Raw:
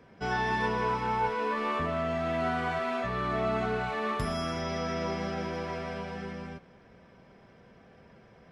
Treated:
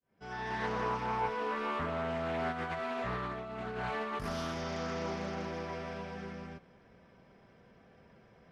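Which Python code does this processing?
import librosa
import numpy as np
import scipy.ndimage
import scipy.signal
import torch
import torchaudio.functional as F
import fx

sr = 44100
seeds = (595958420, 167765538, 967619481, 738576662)

y = fx.fade_in_head(x, sr, length_s=0.76)
y = fx.over_compress(y, sr, threshold_db=-32.0, ratio=-0.5, at=(2.51, 4.26), fade=0.02)
y = fx.doppler_dist(y, sr, depth_ms=0.29)
y = y * 10.0 ** (-4.5 / 20.0)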